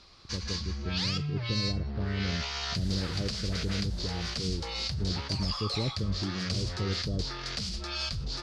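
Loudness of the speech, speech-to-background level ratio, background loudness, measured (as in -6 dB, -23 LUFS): -35.5 LUFS, -2.0 dB, -33.5 LUFS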